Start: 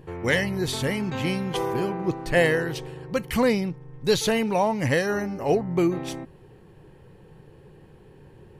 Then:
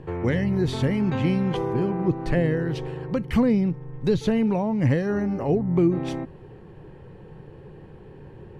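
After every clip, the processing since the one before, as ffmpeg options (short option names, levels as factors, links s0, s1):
-filter_complex "[0:a]aemphasis=mode=reproduction:type=75fm,acrossover=split=330[s0][s1];[s1]acompressor=threshold=0.0178:ratio=5[s2];[s0][s2]amix=inputs=2:normalize=0,volume=1.78"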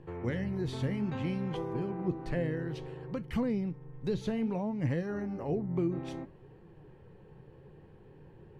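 -af "flanger=delay=5.8:depth=9.9:regen=76:speed=0.6:shape=sinusoidal,volume=0.501"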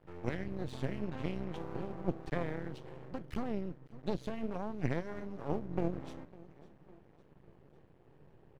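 -af "aeval=exprs='0.106*(cos(1*acos(clip(val(0)/0.106,-1,1)))-cos(1*PI/2))+0.0188*(cos(3*acos(clip(val(0)/0.106,-1,1)))-cos(3*PI/2))':c=same,aecho=1:1:553|1106|1659|2212:0.0891|0.0508|0.029|0.0165,aeval=exprs='max(val(0),0)':c=same,volume=1.41"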